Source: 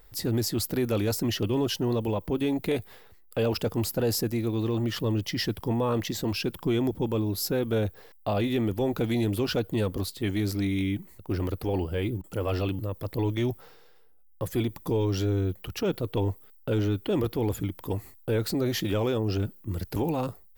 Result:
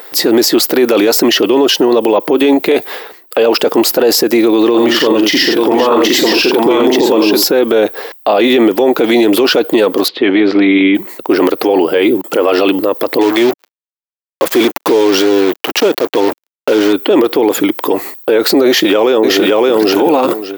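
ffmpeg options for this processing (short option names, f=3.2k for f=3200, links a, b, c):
-filter_complex "[0:a]asettb=1/sr,asplit=3[a][b][c];[a]atrim=end=4.704[d];[b]atrim=start=4.7:end=7.44,asetpts=PTS-STARTPTS,afade=t=in:d=0.004:c=qsin,afade=t=out:st=2.736:d=0.004:c=qsin,aecho=1:1:41|84|881:0.355|0.531|0.668,atrim=end_sample=120834[e];[c]atrim=start=7.436[f];[d][e]acrossfade=d=0.004:c1=hsin:c2=qsin[g];[g][f]acrossfade=d=0.004:c1=qsin:c2=hsin,asettb=1/sr,asplit=3[h][i][j];[h]atrim=end=10.084[k];[i]atrim=start=10.08:end=10.95,asetpts=PTS-STARTPTS,afade=t=in:d=0.004:c=qsin,afade=t=out:st=0.866:d=0.004:c=qsin,lowpass=f=3.3k:w=0.5412,lowpass=f=3.3k:w=1.3066[l];[j]atrim=start=10.946[m];[k][l]acrossfade=d=0.004:c1=hsin:c2=qsin[n];[n][m]acrossfade=d=0.004:c1=qsin:c2=hsin,asettb=1/sr,asplit=3[o][p][q];[o]atrim=end=13.214[r];[p]atrim=start=13.21:end=16.93,asetpts=PTS-STARTPTS,afade=t=in:d=0.004:c=qsin,afade=t=out:st=3.716:d=0.004:c=qsin,acrusher=bits=5:mix=0:aa=0.5[s];[q]atrim=start=16.926[t];[r][s]acrossfade=d=0.004:c1=hsin:c2=qsin[u];[u][t]acrossfade=d=0.004:c1=qsin:c2=hsin,asplit=2[v][w];[w]afade=t=in:st=18.66:d=0.01,afade=t=out:st=19.76:d=0.01,aecho=0:1:570|1140|1710:0.891251|0.133688|0.0200531[x];[v][x]amix=inputs=2:normalize=0,highpass=f=310:w=0.5412,highpass=f=310:w=1.3066,equalizer=f=10k:t=o:w=1.2:g=-9,alimiter=level_in=29dB:limit=-1dB:release=50:level=0:latency=1,volume=-1dB"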